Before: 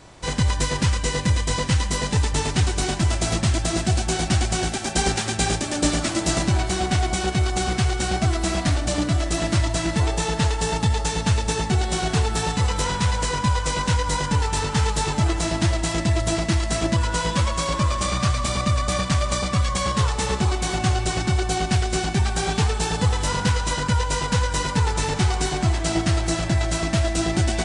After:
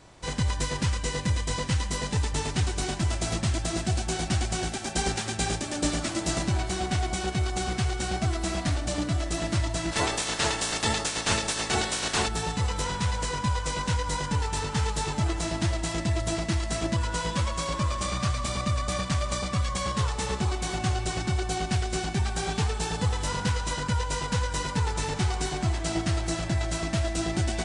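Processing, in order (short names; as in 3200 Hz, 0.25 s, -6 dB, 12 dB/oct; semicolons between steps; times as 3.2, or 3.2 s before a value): 9.91–12.27 spectral limiter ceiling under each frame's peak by 22 dB; gain -6 dB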